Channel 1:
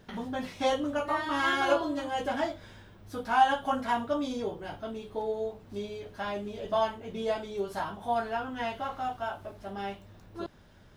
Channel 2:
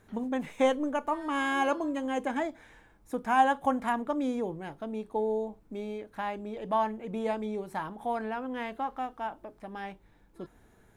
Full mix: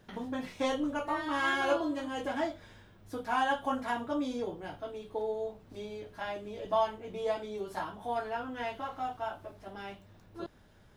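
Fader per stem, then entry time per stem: -4.5, -7.5 dB; 0.00, 0.00 s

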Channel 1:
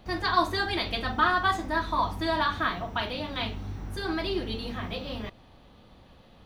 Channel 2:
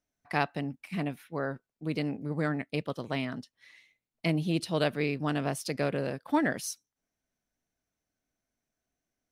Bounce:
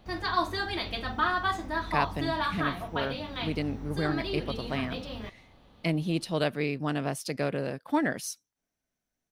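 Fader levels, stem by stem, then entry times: -3.5, 0.0 dB; 0.00, 1.60 s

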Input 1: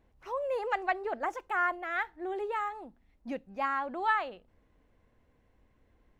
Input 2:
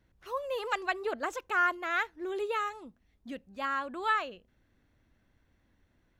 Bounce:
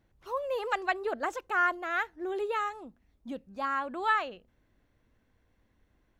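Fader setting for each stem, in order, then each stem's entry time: -6.5, -2.5 dB; 0.00, 0.00 s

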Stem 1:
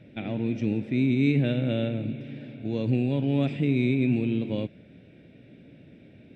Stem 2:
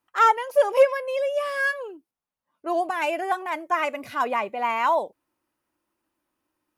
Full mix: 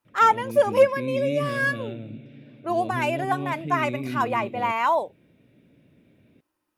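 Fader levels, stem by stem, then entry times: -7.5, 0.0 dB; 0.05, 0.00 s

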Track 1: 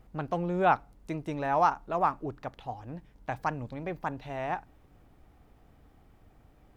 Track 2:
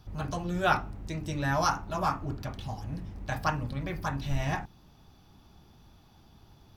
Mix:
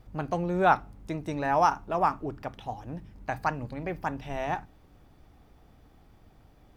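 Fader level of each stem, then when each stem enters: +1.5, -10.5 dB; 0.00, 0.00 s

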